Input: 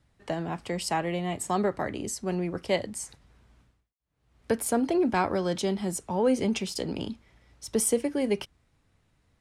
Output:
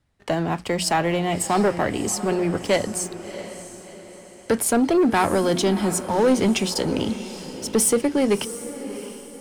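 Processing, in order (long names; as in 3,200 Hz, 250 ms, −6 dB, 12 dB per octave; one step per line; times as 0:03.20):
mains-hum notches 60/120/180 Hz
leveller curve on the samples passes 2
feedback delay with all-pass diffusion 672 ms, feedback 43%, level −12.5 dB
level +1.5 dB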